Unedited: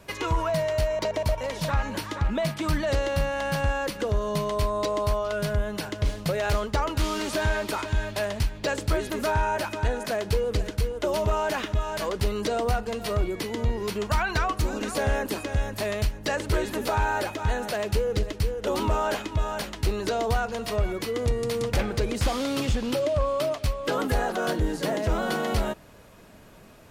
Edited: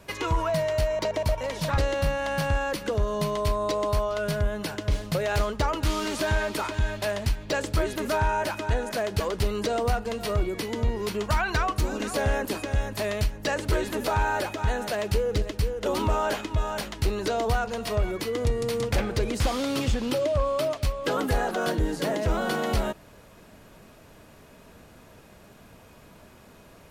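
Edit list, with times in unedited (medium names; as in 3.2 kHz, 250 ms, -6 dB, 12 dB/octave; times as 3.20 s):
1.78–2.92 s: delete
10.34–12.01 s: delete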